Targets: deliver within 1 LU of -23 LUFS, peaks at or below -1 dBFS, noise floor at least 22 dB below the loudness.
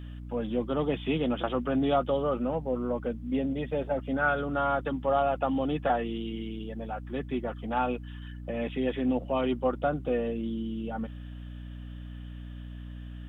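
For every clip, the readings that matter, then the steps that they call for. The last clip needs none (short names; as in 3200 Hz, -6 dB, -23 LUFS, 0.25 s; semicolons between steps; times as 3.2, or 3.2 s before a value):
hum 60 Hz; harmonics up to 300 Hz; hum level -38 dBFS; loudness -30.0 LUFS; peak -14.0 dBFS; loudness target -23.0 LUFS
-> de-hum 60 Hz, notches 5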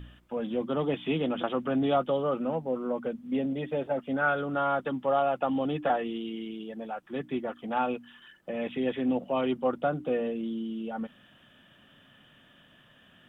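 hum none; loudness -30.5 LUFS; peak -14.0 dBFS; loudness target -23.0 LUFS
-> gain +7.5 dB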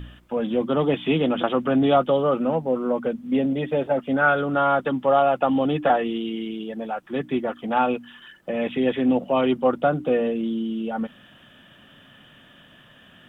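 loudness -23.0 LUFS; peak -6.5 dBFS; noise floor -52 dBFS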